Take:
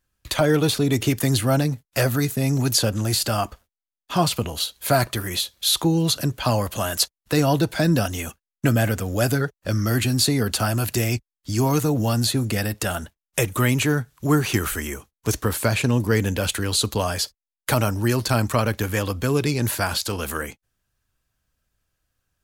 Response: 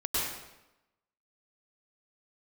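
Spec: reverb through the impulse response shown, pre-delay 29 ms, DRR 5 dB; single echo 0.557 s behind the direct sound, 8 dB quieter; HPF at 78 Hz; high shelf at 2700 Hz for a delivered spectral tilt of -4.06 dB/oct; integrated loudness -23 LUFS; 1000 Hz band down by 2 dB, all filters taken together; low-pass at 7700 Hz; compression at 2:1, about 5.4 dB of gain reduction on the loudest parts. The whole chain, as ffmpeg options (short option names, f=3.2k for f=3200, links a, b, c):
-filter_complex "[0:a]highpass=78,lowpass=7.7k,equalizer=f=1k:t=o:g=-4,highshelf=f=2.7k:g=6,acompressor=threshold=-23dB:ratio=2,aecho=1:1:557:0.398,asplit=2[a][b];[1:a]atrim=start_sample=2205,adelay=29[c];[b][c]afir=irnorm=-1:irlink=0,volume=-13.5dB[d];[a][d]amix=inputs=2:normalize=0,volume=1dB"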